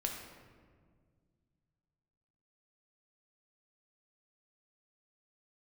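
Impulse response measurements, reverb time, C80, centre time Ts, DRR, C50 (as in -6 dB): 1.8 s, 5.5 dB, 51 ms, 1.0 dB, 3.5 dB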